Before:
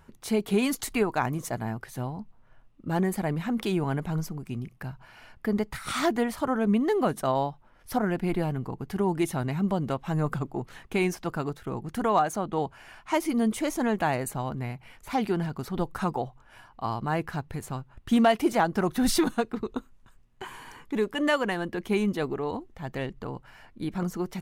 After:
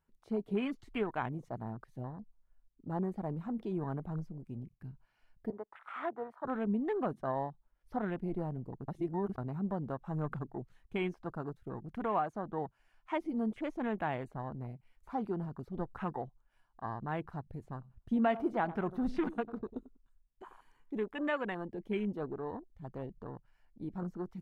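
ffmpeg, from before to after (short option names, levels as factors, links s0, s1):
-filter_complex "[0:a]asettb=1/sr,asplit=3[s0][s1][s2];[s0]atrim=end=5.504[s3];[s1]atrim=start=5.5:end=6.45,asetpts=PTS-STARTPTS,afade=t=in:d=0.004:c=qsin,afade=t=out:st=0.946:d=0.004:c=qsin,acrossover=split=380 2100:gain=0.0708 1 0.0891[s4][s5][s6];[s4][s5][s6]amix=inputs=3:normalize=0[s7];[s2]atrim=start=6.446[s8];[s3][s7]acrossfade=d=0.004:c1=hsin:c2=qsin[s9];[s9][s8]acrossfade=d=0.004:c1=qsin:c2=hsin,asettb=1/sr,asplit=3[s10][s11][s12];[s10]atrim=end=17.604[s13];[s11]atrim=start=17.6:end=21.03,asetpts=PTS-STARTPTS,afade=t=in:d=0.004:c=qsin,afade=t=out:st=3.426:d=0.004:c=qsin,asplit=2[s14][s15];[s15]adelay=95,lowpass=f=1800:p=1,volume=0.188,asplit=2[s16][s17];[s17]adelay=95,lowpass=f=1800:p=1,volume=0.26,asplit=2[s18][s19];[s19]adelay=95,lowpass=f=1800:p=1,volume=0.26[s20];[s14][s16][s18][s20]amix=inputs=4:normalize=0,atrim=end_sample=151263[s21];[s12]atrim=start=21.026[s22];[s13][s21]acrossfade=d=0.004:c1=hsin:c2=qsin[s23];[s23][s22]acrossfade=d=0.004:c1=qsin:c2=hsin,asplit=3[s24][s25][s26];[s24]atrim=end=8.882[s27];[s25]atrim=start=8.878:end=9.382,asetpts=PTS-STARTPTS,areverse[s28];[s26]atrim=start=9.378[s29];[s27][s28]acrossfade=d=0.004:c1=hsin:c2=hsin[s30];[s30][s29]acrossfade=d=0.004:c1=hsin:c2=hsin,acrossover=split=4900[s31][s32];[s32]acompressor=threshold=0.00224:ratio=4:attack=1:release=60[s33];[s31][s33]amix=inputs=2:normalize=0,afwtdn=0.0158,volume=0.355"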